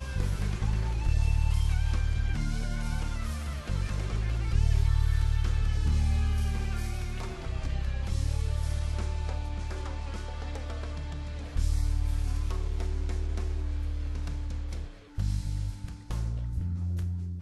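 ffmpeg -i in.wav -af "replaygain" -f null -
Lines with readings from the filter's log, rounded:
track_gain = +20.0 dB
track_peak = 0.145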